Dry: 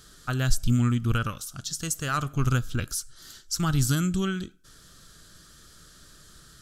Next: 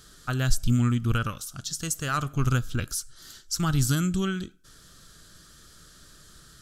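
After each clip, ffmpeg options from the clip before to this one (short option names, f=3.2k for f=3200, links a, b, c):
-af anull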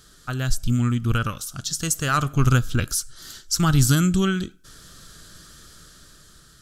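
-af "dynaudnorm=f=320:g=7:m=6.5dB"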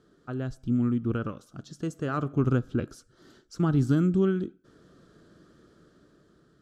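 -af "bandpass=f=350:t=q:w=1.3:csg=0,volume=2dB"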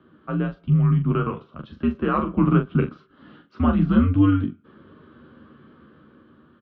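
-af "highpass=f=220:t=q:w=0.5412,highpass=f=220:t=q:w=1.307,lowpass=f=3.2k:t=q:w=0.5176,lowpass=f=3.2k:t=q:w=0.7071,lowpass=f=3.2k:t=q:w=1.932,afreqshift=-90,aecho=1:1:13|42:0.531|0.447,volume=8dB"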